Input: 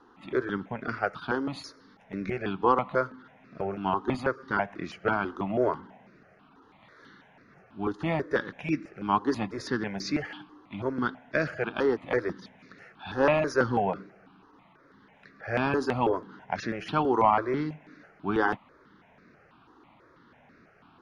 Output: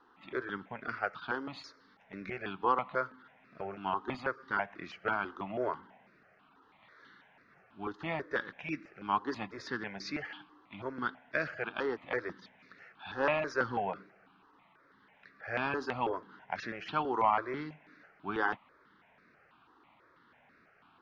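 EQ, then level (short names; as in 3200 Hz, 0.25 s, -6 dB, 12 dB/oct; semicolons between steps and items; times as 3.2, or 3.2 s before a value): air absorption 150 m; tilt shelf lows -6 dB, about 730 Hz; -6.0 dB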